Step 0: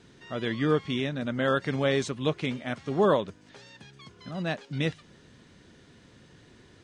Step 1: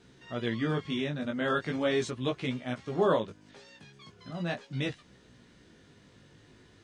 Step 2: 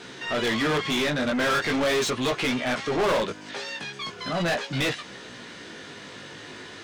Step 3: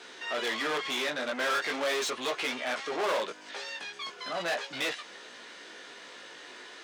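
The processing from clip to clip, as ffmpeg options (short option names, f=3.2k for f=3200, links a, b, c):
-af "flanger=delay=15.5:depth=4.6:speed=0.4"
-filter_complex "[0:a]asplit=2[a][b];[b]highpass=f=720:p=1,volume=32dB,asoftclip=type=tanh:threshold=-13dB[c];[a][c]amix=inputs=2:normalize=0,lowpass=f=5.4k:p=1,volume=-6dB,volume=-3.5dB"
-af "highpass=440,volume=-4.5dB"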